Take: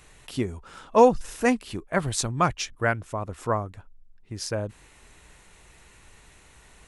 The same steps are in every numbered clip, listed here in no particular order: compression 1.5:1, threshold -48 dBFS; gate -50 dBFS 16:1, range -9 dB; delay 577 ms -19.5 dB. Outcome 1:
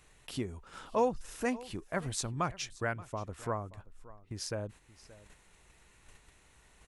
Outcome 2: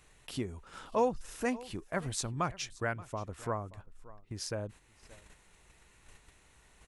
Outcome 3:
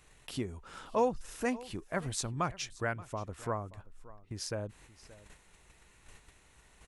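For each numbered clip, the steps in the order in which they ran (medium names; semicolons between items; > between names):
compression > gate > delay; compression > delay > gate; gate > compression > delay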